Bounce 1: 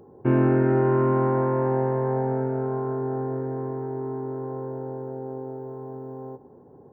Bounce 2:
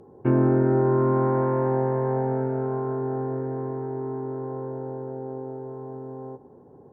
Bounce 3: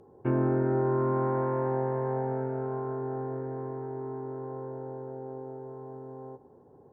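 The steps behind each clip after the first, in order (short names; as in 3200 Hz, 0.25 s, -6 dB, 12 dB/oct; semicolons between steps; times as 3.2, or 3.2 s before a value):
treble ducked by the level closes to 1300 Hz, closed at -16.5 dBFS
bell 210 Hz -4 dB 1.6 oct; gain -4 dB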